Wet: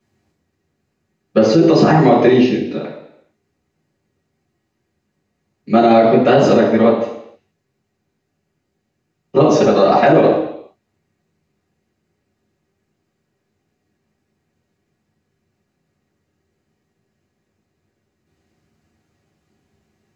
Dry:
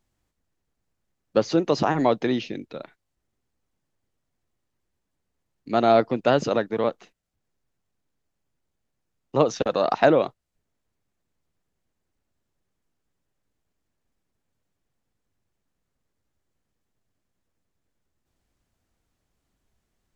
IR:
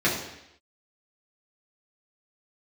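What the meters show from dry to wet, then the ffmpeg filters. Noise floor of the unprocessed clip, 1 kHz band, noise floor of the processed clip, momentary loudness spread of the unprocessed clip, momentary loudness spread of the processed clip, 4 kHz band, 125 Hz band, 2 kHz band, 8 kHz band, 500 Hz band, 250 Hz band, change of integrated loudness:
−79 dBFS, +9.0 dB, −72 dBFS, 11 LU, 10 LU, +7.5 dB, +12.5 dB, +8.0 dB, can't be measured, +10.0 dB, +13.0 dB, +10.0 dB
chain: -filter_complex "[1:a]atrim=start_sample=2205,asetrate=48510,aresample=44100[link_01];[0:a][link_01]afir=irnorm=-1:irlink=0,alimiter=level_in=-2dB:limit=-1dB:release=50:level=0:latency=1,volume=-1dB"

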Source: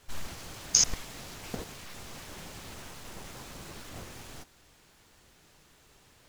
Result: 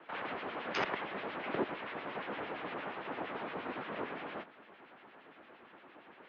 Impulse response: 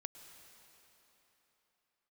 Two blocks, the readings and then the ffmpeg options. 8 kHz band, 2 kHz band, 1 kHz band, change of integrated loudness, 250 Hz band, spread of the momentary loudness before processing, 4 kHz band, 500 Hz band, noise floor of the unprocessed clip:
below −35 dB, +6.0 dB, +8.5 dB, −6.5 dB, +4.0 dB, 21 LU, −11.5 dB, +8.5 dB, −62 dBFS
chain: -filter_complex "[0:a]acrossover=split=1700[link_01][link_02];[link_01]aeval=exprs='val(0)*(1-0.7/2+0.7/2*cos(2*PI*8.7*n/s))':channel_layout=same[link_03];[link_02]aeval=exprs='val(0)*(1-0.7/2-0.7/2*cos(2*PI*8.7*n/s))':channel_layout=same[link_04];[link_03][link_04]amix=inputs=2:normalize=0,acrossover=split=590[link_05][link_06];[link_05]asoftclip=type=hard:threshold=-33dB[link_07];[link_07][link_06]amix=inputs=2:normalize=0,highpass=frequency=170:width_type=q:width=0.5412,highpass=frequency=170:width_type=q:width=1.307,lowpass=frequency=3500:width_type=q:width=0.5176,lowpass=frequency=3500:width_type=q:width=0.7071,lowpass=frequency=3500:width_type=q:width=1.932,afreqshift=-87,acrossover=split=210 2300:gain=0.0708 1 0.178[link_08][link_09][link_10];[link_08][link_09][link_10]amix=inputs=3:normalize=0,volume=13dB"

